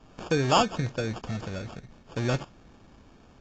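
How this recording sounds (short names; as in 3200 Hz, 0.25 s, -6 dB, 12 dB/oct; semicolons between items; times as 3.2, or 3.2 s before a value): aliases and images of a low sample rate 2000 Hz, jitter 0%; AAC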